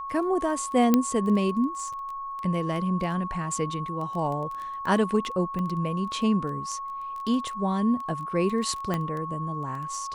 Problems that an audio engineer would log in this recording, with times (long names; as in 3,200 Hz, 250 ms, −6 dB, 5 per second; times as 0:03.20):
surface crackle 12 per second −31 dBFS
whistle 1,100 Hz −32 dBFS
0:00.94: click −7 dBFS
0:05.59: click −21 dBFS
0:08.94: click −14 dBFS